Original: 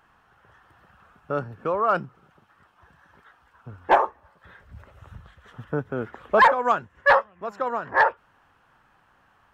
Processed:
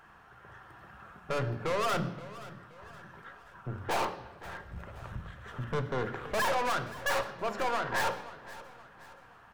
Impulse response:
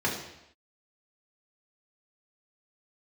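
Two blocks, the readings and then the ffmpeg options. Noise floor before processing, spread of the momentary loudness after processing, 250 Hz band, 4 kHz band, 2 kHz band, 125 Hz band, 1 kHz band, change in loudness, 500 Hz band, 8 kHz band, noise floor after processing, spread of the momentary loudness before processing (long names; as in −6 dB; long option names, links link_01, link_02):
−62 dBFS, 21 LU, −4.5 dB, +0.5 dB, −10.0 dB, +1.0 dB, −11.0 dB, −11.0 dB, −8.5 dB, can't be measured, −56 dBFS, 14 LU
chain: -filter_complex "[0:a]aeval=exprs='(tanh(56.2*val(0)+0.55)-tanh(0.55))/56.2':channel_layout=same,aecho=1:1:524|1048|1572|2096:0.141|0.0622|0.0273|0.012,asplit=2[link_01][link_02];[1:a]atrim=start_sample=2205,asetrate=37485,aresample=44100[link_03];[link_02][link_03]afir=irnorm=-1:irlink=0,volume=-16dB[link_04];[link_01][link_04]amix=inputs=2:normalize=0,volume=4dB"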